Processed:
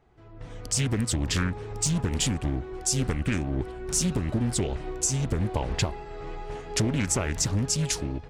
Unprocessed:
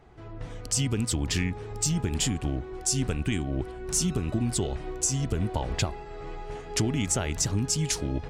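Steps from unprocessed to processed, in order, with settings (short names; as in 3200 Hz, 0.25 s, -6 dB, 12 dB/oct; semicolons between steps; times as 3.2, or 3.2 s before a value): AGC gain up to 10 dB; Doppler distortion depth 0.58 ms; gain -8.5 dB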